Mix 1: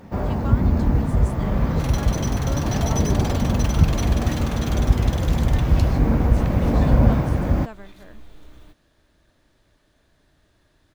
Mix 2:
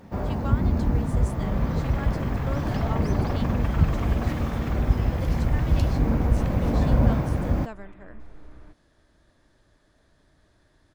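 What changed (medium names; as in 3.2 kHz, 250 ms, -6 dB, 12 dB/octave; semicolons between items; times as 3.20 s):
first sound -4.0 dB; second sound: add low-pass 2.1 kHz 24 dB/octave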